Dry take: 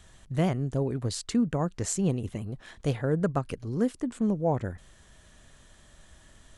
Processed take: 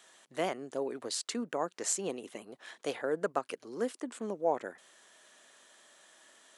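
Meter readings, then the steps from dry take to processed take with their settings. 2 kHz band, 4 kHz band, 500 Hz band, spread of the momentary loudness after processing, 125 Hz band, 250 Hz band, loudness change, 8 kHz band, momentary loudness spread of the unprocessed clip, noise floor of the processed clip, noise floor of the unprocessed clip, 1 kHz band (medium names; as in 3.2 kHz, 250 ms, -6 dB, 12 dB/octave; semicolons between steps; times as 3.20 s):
0.0 dB, 0.0 dB, -3.0 dB, 12 LU, -24.5 dB, -12.5 dB, -6.0 dB, 0.0 dB, 8 LU, -69 dBFS, -57 dBFS, -1.0 dB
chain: Bessel high-pass 460 Hz, order 4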